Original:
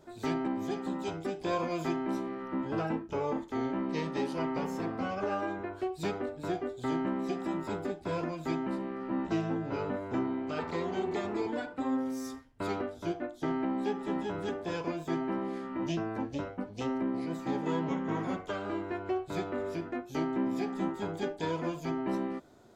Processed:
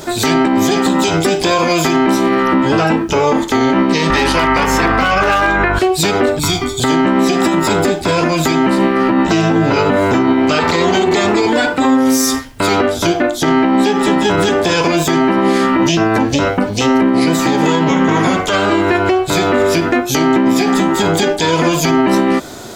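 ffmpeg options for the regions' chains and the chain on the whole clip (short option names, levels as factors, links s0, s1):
-filter_complex "[0:a]asettb=1/sr,asplit=3[s0][s1][s2];[s0]atrim=end=4.104[s3];[s1]atrim=start=4.1:end=5.79,asetpts=PTS-STARTPTS,afade=t=in:d=0.004:c=qsin,afade=t=out:st=1.686:d=0.004:c=qsin,equalizer=f=1600:t=o:w=2.4:g=11,asoftclip=type=hard:threshold=0.0891,aeval=exprs='val(0)+0.0126*(sin(2*PI*50*n/s)+sin(2*PI*2*50*n/s)/2+sin(2*PI*3*50*n/s)/3+sin(2*PI*4*50*n/s)/4+sin(2*PI*5*50*n/s)/5)':c=same[s4];[s2]atrim=start=5.786[s5];[s3][s4]acrossfade=d=0.004:c1=hsin:c2=qsin[s6];[s6][s5]acrossfade=d=0.004:c1=qsin:c2=hsin,asettb=1/sr,asplit=3[s7][s8][s9];[s7]atrim=end=6.394[s10];[s8]atrim=start=6.39:end=6.8,asetpts=PTS-STARTPTS,afade=t=in:d=0.004:c=qsin,afade=t=out:st=0.406:d=0.004:c=qsin,aecho=1:1:0.9:0.86,atrim=end_sample=18081,acrossover=split=120|3000[s11][s12][s13];[s12]acompressor=threshold=0.00224:ratio=2:attack=3.2:release=140:knee=2.83:detection=peak[s14];[s11][s14][s13]amix=inputs=3:normalize=0[s15];[s9]atrim=start=6.796[s16];[s10][s15]acrossfade=d=0.004:c1=hsin:c2=qsin[s17];[s17][s16]acrossfade=d=0.004:c1=qsin:c2=hsin,highshelf=f=2000:g=12,acompressor=threshold=0.0251:ratio=6,alimiter=level_in=31.6:limit=0.891:release=50:level=0:latency=1,volume=0.668"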